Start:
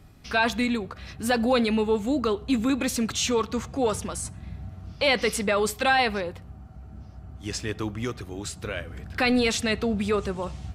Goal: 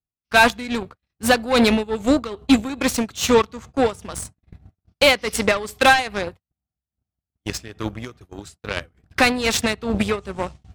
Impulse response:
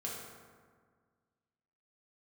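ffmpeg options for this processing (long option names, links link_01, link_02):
-af "agate=range=-39dB:threshold=-35dB:ratio=16:detection=peak,acontrast=41,tremolo=f=2.4:d=0.62,aeval=exprs='0.422*(cos(1*acos(clip(val(0)/0.422,-1,1)))-cos(1*PI/2))+0.0473*(cos(7*acos(clip(val(0)/0.422,-1,1)))-cos(7*PI/2))':channel_layout=same,volume=4.5dB" -ar 44100 -c:a libmp3lame -b:a 128k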